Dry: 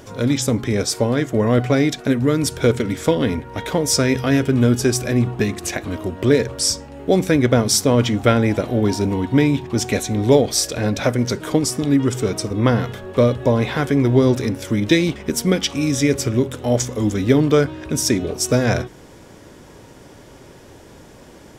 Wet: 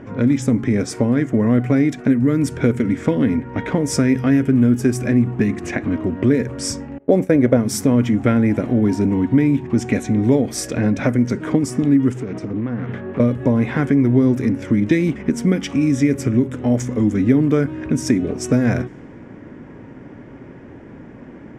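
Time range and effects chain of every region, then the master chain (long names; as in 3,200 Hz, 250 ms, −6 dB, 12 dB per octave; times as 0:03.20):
0:06.98–0:07.57: downward expander −20 dBFS + parametric band 570 Hz +11 dB 0.85 octaves
0:12.11–0:13.20: high-pass filter 80 Hz + downward compressor 16 to 1, threshold −25 dBFS + highs frequency-modulated by the lows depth 0.25 ms
whole clip: low-pass that shuts in the quiet parts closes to 2,600 Hz, open at −12.5 dBFS; octave-band graphic EQ 125/250/2,000/4,000 Hz +5/+11/+7/−11 dB; downward compressor 2 to 1, threshold −15 dBFS; level −1.5 dB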